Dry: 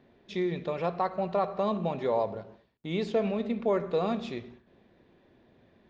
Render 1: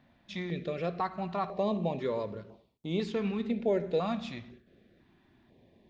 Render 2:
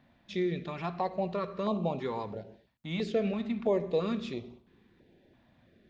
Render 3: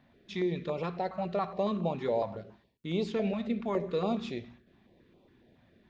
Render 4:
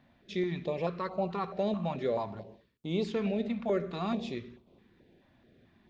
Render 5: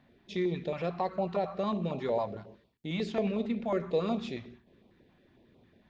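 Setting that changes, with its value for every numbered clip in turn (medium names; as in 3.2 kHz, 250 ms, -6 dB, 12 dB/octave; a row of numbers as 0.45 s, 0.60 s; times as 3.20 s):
step-sequenced notch, rate: 2 Hz, 3 Hz, 7.2 Hz, 4.6 Hz, 11 Hz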